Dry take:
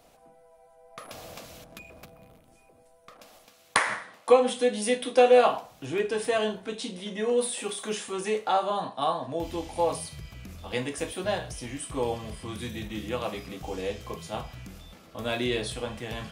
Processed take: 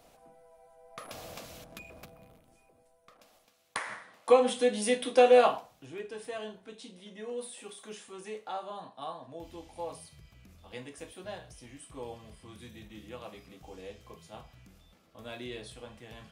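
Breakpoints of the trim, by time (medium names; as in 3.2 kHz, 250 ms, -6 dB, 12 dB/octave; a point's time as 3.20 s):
1.99 s -1.5 dB
3.79 s -12.5 dB
4.38 s -2 dB
5.44 s -2 dB
5.90 s -13 dB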